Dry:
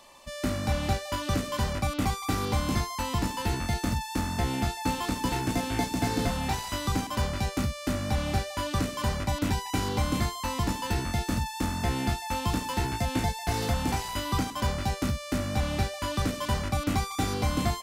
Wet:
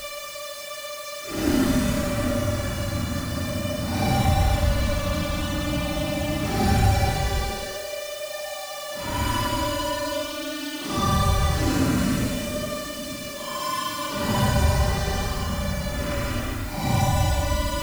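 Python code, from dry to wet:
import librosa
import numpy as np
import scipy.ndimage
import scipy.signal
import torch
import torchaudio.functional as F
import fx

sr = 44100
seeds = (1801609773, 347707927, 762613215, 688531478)

y = fx.paulstretch(x, sr, seeds[0], factor=11.0, window_s=0.05, from_s=7.74)
y = fx.quant_dither(y, sr, seeds[1], bits=8, dither='triangular')
y = F.gain(torch.from_numpy(y), 4.5).numpy()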